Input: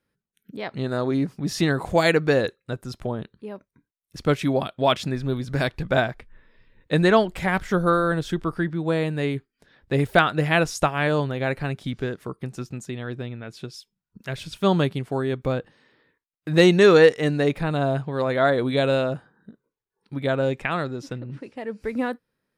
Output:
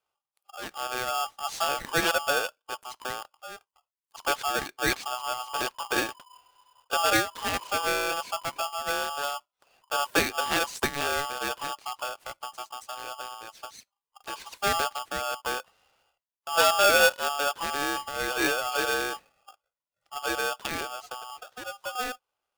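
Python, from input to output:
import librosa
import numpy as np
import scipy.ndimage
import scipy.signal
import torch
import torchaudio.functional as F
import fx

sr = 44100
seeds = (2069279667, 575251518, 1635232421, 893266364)

y = fx.notch(x, sr, hz=1200.0, q=12.0)
y = y * np.sign(np.sin(2.0 * np.pi * 1000.0 * np.arange(len(y)) / sr))
y = y * librosa.db_to_amplitude(-6.5)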